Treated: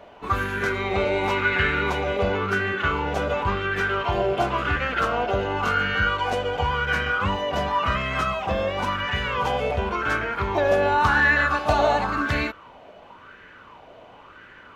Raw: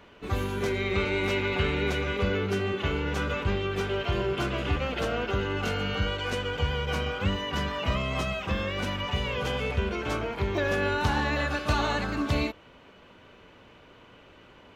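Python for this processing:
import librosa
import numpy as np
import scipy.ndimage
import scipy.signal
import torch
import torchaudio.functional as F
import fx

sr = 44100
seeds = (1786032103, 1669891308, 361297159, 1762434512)

y = fx.rattle_buzz(x, sr, strikes_db=-29.0, level_db=-37.0)
y = fx.bell_lfo(y, sr, hz=0.93, low_hz=650.0, high_hz=1700.0, db=17)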